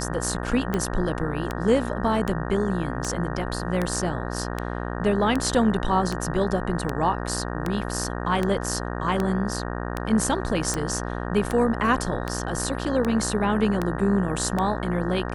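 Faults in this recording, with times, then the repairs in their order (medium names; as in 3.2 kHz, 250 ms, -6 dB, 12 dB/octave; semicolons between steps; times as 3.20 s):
buzz 60 Hz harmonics 31 -30 dBFS
tick 78 rpm -12 dBFS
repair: de-click; de-hum 60 Hz, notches 31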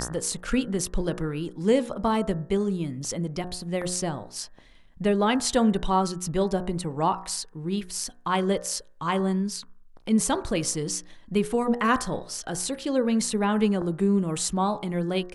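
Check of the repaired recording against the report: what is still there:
nothing left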